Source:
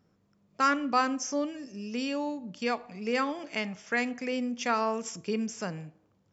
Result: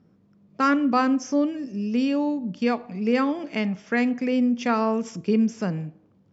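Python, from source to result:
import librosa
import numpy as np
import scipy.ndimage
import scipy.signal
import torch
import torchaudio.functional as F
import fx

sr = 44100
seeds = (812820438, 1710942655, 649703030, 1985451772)

y = scipy.signal.sosfilt(scipy.signal.butter(2, 5200.0, 'lowpass', fs=sr, output='sos'), x)
y = fx.peak_eq(y, sr, hz=210.0, db=10.0, octaves=2.3)
y = y * 10.0 ** (1.5 / 20.0)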